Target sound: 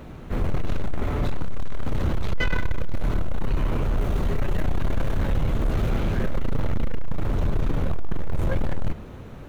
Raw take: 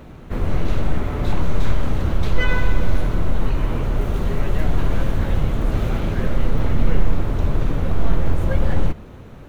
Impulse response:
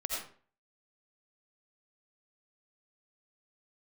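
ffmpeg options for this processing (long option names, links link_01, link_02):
-af "asoftclip=type=tanh:threshold=-15.5dB"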